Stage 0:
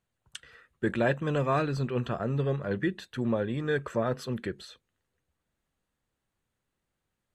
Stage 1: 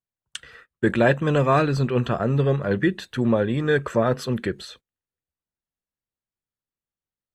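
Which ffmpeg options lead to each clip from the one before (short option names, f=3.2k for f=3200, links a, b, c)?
-af "agate=range=-23dB:threshold=-55dB:ratio=16:detection=peak,volume=8dB"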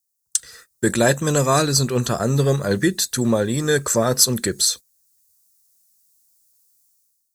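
-af "dynaudnorm=f=140:g=7:m=14.5dB,aexciter=amount=13.7:drive=6.8:freq=4.5k,volume=-6dB"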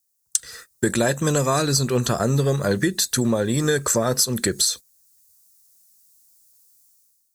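-af "acompressor=threshold=-21dB:ratio=6,volume=4dB"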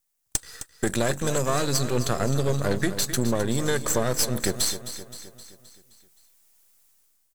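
-filter_complex "[0:a]aeval=exprs='if(lt(val(0),0),0.251*val(0),val(0))':c=same,asplit=2[a][b];[b]aecho=0:1:261|522|783|1044|1305|1566:0.251|0.136|0.0732|0.0396|0.0214|0.0115[c];[a][c]amix=inputs=2:normalize=0,volume=-1.5dB"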